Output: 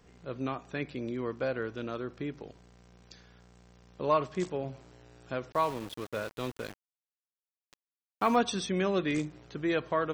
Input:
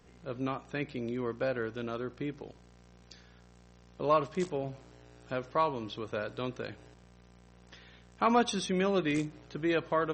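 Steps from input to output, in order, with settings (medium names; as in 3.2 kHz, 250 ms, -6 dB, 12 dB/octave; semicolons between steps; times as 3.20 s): 5.52–8.36 s: small samples zeroed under -40.5 dBFS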